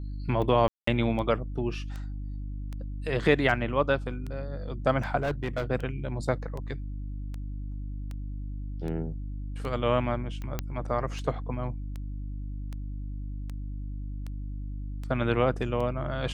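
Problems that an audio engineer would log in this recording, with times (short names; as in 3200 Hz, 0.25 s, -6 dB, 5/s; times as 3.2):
hum 50 Hz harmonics 6 -35 dBFS
tick 78 rpm -25 dBFS
0.68–0.87 gap 0.194 s
5.19–5.64 clipped -24.5 dBFS
10.59 pop -15 dBFS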